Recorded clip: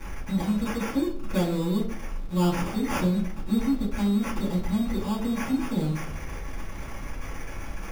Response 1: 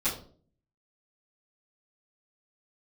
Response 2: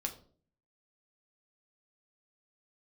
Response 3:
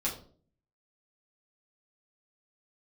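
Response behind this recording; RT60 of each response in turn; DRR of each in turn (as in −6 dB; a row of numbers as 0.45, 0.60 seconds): 1; 0.45, 0.45, 0.45 seconds; −15.0, 2.5, −6.5 decibels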